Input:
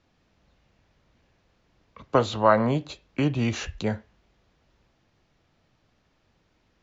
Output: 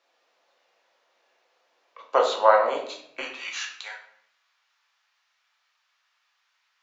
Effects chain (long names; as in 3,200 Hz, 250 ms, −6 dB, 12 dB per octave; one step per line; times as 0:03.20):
high-pass filter 500 Hz 24 dB per octave, from 0:03.21 1,100 Hz
rectangular room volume 140 cubic metres, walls mixed, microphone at 0.81 metres